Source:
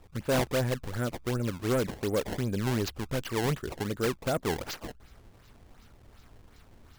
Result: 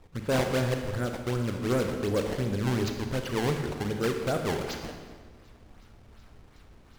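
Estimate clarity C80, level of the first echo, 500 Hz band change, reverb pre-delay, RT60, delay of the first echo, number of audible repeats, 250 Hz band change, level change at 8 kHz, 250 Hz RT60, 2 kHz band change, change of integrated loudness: 6.5 dB, none, +1.5 dB, 25 ms, 1.5 s, none, none, +2.0 dB, -1.0 dB, 1.6 s, +1.5 dB, +1.5 dB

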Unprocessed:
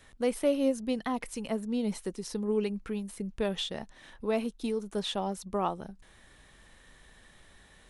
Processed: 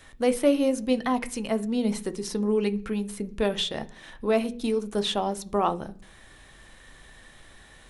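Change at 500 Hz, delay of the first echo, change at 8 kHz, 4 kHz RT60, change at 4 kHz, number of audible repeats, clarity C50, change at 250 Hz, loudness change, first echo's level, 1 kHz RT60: +5.5 dB, none, +6.0 dB, 0.60 s, +6.0 dB, none, 19.5 dB, +5.5 dB, +5.5 dB, none, 0.40 s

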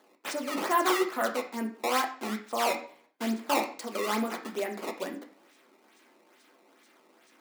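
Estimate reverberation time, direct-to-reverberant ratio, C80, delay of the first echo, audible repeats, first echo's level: 0.55 s, 1.5 dB, 14.5 dB, none, none, none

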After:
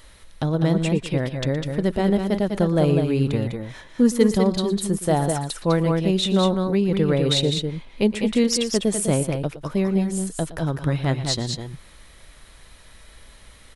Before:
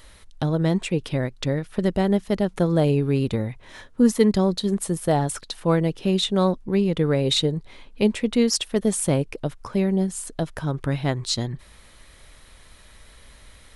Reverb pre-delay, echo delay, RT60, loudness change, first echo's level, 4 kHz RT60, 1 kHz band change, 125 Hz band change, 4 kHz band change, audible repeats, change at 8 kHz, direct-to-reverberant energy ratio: none, 0.117 s, none, +1.0 dB, -16.0 dB, none, +1.0 dB, +1.5 dB, +1.0 dB, 2, +1.0 dB, none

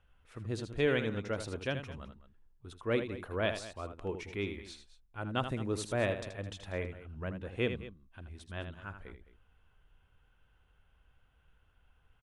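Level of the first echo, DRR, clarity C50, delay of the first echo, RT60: -9.0 dB, none, none, 79 ms, none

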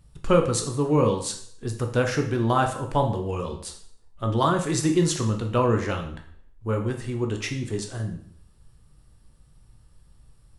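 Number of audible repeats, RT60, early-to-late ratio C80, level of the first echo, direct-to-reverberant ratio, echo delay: none, 0.60 s, 12.5 dB, none, 3.0 dB, none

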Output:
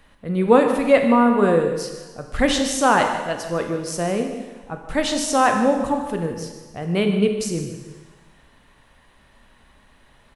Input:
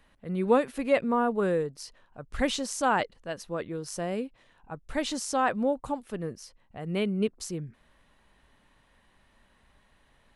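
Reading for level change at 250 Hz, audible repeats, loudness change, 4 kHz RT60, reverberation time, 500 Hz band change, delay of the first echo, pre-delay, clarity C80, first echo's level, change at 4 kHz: +10.0 dB, 1, +9.5 dB, 1.4 s, 1.4 s, +9.5 dB, 0.151 s, 16 ms, 7.0 dB, -14.0 dB, +9.5 dB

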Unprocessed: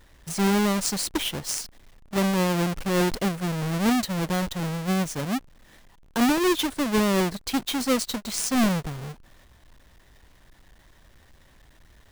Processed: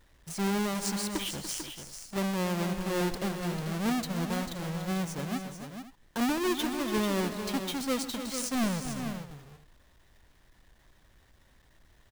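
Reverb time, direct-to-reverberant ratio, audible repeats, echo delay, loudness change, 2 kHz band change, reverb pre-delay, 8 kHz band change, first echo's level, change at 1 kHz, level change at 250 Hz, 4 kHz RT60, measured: none, none, 4, 0.128 s, -7.0 dB, -6.5 dB, none, -6.5 dB, -17.0 dB, -6.5 dB, -6.5 dB, none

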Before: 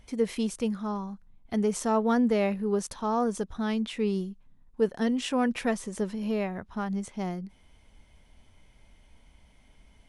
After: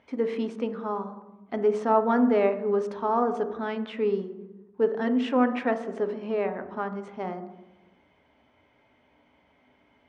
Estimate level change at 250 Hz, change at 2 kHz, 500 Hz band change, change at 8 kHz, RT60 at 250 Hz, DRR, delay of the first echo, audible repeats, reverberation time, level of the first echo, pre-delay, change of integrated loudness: -0.5 dB, +1.5 dB, +4.0 dB, under -15 dB, 1.2 s, 7.5 dB, none, none, 1.0 s, none, 3 ms, +2.0 dB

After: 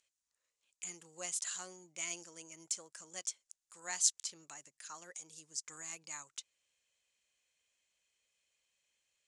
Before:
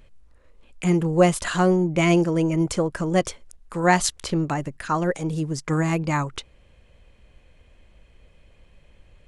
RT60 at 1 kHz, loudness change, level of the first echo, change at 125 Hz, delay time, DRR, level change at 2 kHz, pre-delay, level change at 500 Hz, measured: none, -17.5 dB, none, under -40 dB, none, none, -21.0 dB, none, -33.5 dB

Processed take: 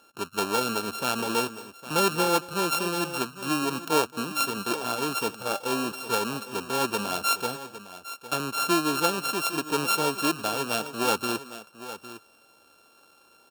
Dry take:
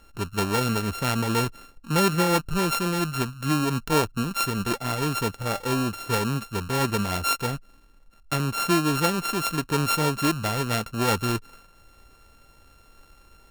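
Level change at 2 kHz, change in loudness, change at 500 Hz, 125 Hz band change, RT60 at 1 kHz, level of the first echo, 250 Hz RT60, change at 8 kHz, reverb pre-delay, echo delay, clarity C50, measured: -1.0 dB, -1.5 dB, -0.5 dB, -13.0 dB, none, -19.5 dB, none, 0.0 dB, none, 0.223 s, none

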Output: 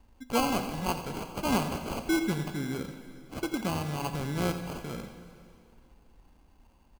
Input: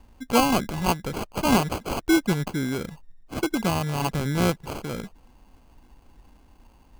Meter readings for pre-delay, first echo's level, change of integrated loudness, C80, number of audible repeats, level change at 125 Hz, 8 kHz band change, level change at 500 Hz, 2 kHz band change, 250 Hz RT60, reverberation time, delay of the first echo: 4 ms, -12.5 dB, -6.5 dB, 8.0 dB, 1, -6.5 dB, -6.5 dB, -6.5 dB, -6.5 dB, 2.4 s, 2.5 s, 86 ms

